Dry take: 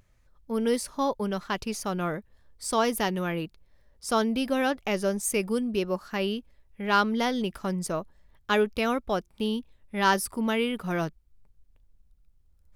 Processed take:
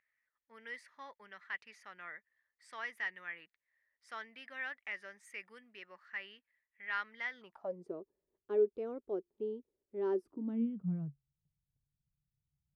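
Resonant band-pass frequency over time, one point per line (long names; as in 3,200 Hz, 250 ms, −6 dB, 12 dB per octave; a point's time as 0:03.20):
resonant band-pass, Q 7.8
0:07.30 1,900 Hz
0:07.82 390 Hz
0:10.14 390 Hz
0:11.07 140 Hz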